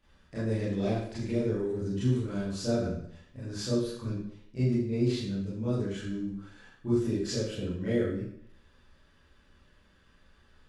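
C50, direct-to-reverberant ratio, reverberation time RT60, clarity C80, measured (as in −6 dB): 1.5 dB, −11.0 dB, 0.70 s, 5.0 dB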